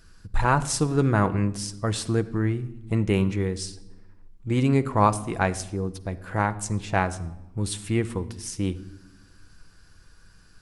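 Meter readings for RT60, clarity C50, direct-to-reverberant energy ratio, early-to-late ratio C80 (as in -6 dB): 1.0 s, 16.5 dB, 9.5 dB, 19.0 dB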